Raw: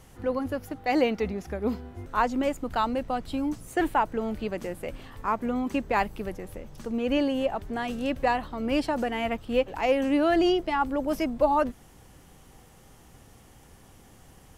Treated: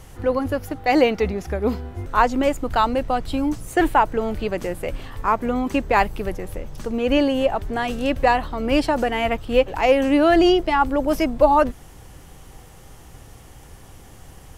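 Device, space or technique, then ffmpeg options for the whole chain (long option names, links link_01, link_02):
low shelf boost with a cut just above: -af "lowshelf=frequency=86:gain=5.5,equalizer=frequency=220:width_type=o:width=0.55:gain=-5,volume=7.5dB"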